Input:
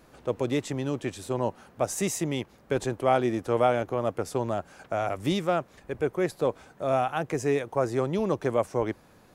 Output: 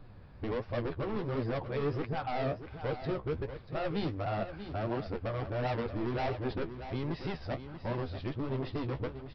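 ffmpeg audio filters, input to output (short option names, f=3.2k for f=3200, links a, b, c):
-filter_complex "[0:a]areverse,bass=f=250:g=1,treble=f=4k:g=-5,aresample=11025,asoftclip=type=hard:threshold=-27.5dB,aresample=44100,flanger=delay=6.5:depth=9.7:regen=36:speed=1.4:shape=triangular,acrossover=split=110[a][b];[a]aeval=exprs='0.0141*sin(PI/2*4.47*val(0)/0.0141)':c=same[c];[c][b]amix=inputs=2:normalize=0,aecho=1:1:636:0.299"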